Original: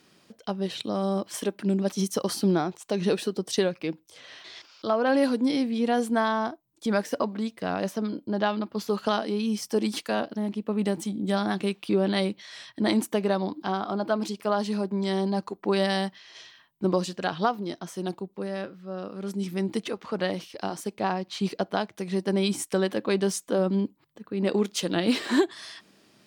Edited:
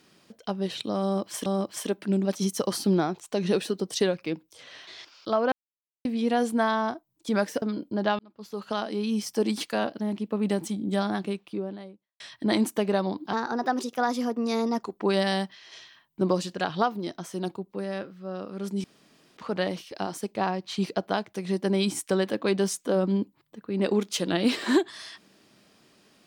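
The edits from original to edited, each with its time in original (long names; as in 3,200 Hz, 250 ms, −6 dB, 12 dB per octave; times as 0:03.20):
0:01.03–0:01.46: repeat, 2 plays
0:05.09–0:05.62: silence
0:07.19–0:07.98: remove
0:08.55–0:09.49: fade in linear
0:11.15–0:12.56: fade out and dull
0:13.69–0:15.46: play speed 118%
0:19.47–0:20.00: fill with room tone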